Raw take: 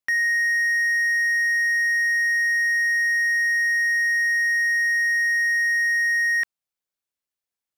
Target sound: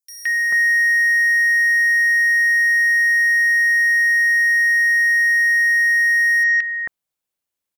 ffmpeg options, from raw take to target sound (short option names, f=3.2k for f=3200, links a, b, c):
-filter_complex "[0:a]acrossover=split=1600|5000[a][b][c];[b]adelay=170[d];[a]adelay=440[e];[e][d][c]amix=inputs=3:normalize=0,volume=6dB"